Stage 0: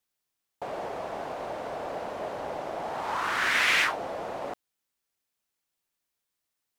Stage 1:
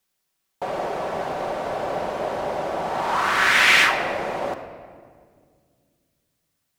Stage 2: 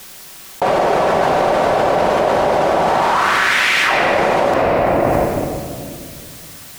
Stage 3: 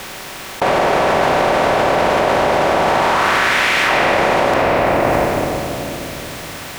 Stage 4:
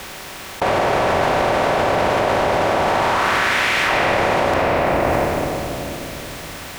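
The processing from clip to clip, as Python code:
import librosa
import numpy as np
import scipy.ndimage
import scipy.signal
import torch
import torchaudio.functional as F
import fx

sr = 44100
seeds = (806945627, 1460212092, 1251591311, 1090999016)

y1 = fx.room_shoebox(x, sr, seeds[0], volume_m3=3300.0, walls='mixed', distance_m=1.1)
y1 = y1 * 10.0 ** (7.0 / 20.0)
y2 = fx.env_flatten(y1, sr, amount_pct=100)
y2 = y2 * 10.0 ** (-1.0 / 20.0)
y3 = fx.bin_compress(y2, sr, power=0.6)
y3 = y3 * 10.0 ** (-3.0 / 20.0)
y4 = fx.octave_divider(y3, sr, octaves=2, level_db=-6.0)
y4 = y4 * 10.0 ** (-3.0 / 20.0)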